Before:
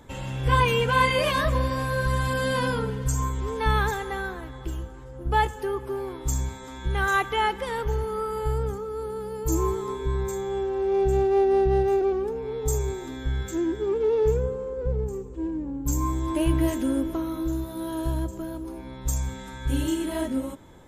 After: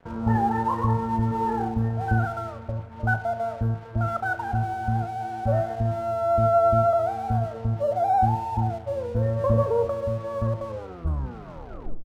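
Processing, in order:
turntable brake at the end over 2.39 s
elliptic low-pass filter 810 Hz, stop band 40 dB
dead-zone distortion −50 dBFS
on a send: repeating echo 63 ms, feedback 52%, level −13 dB
on the sum: wrong playback speed 45 rpm record played at 78 rpm
level +2.5 dB

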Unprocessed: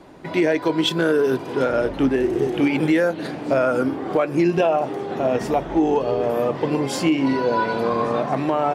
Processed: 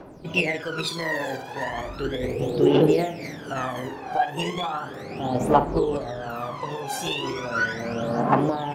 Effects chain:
formants moved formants +4 semitones
flutter between parallel walls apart 9.5 metres, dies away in 0.4 s
phase shifter 0.36 Hz, delay 1.3 ms, feedback 79%
level −8.5 dB

